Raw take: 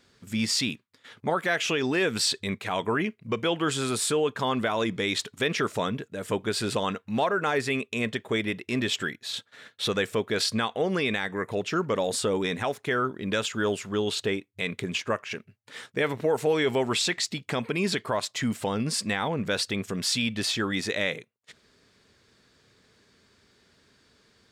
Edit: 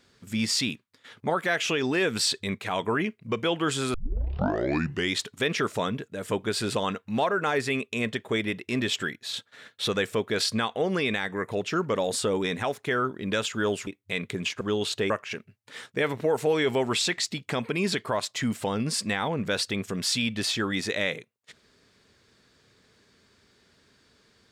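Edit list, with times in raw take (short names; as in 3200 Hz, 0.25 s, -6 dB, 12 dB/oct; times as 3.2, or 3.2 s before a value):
3.94 tape start 1.22 s
13.87–14.36 move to 15.1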